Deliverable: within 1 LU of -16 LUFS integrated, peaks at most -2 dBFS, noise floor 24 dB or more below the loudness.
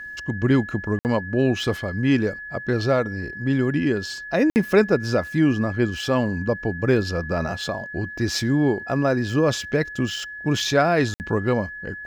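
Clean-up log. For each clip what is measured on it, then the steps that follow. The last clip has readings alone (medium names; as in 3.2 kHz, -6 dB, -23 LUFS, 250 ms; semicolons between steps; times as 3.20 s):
dropouts 3; longest dropout 59 ms; steady tone 1.7 kHz; tone level -33 dBFS; loudness -22.5 LUFS; peak level -5.0 dBFS; loudness target -16.0 LUFS
-> interpolate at 0.99/4.50/11.14 s, 59 ms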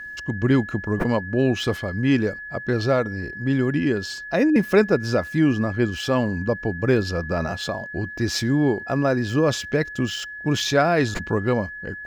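dropouts 0; steady tone 1.7 kHz; tone level -33 dBFS
-> band-stop 1.7 kHz, Q 30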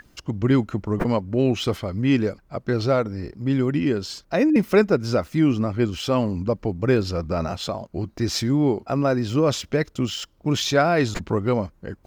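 steady tone not found; loudness -23.0 LUFS; peak level -5.5 dBFS; loudness target -16.0 LUFS
-> trim +7 dB; peak limiter -2 dBFS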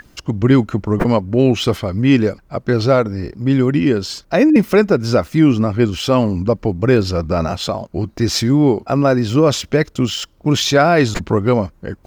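loudness -16.0 LUFS; peak level -2.0 dBFS; noise floor -51 dBFS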